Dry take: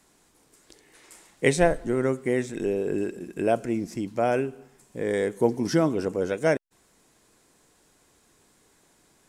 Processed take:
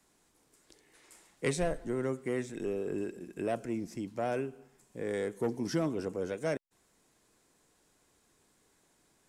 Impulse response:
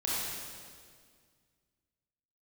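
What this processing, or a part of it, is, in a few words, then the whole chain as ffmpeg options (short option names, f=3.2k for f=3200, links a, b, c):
one-band saturation: -filter_complex "[0:a]acrossover=split=250|3000[a][b][c];[b]asoftclip=type=tanh:threshold=-18.5dB[d];[a][d][c]amix=inputs=3:normalize=0,volume=-7.5dB"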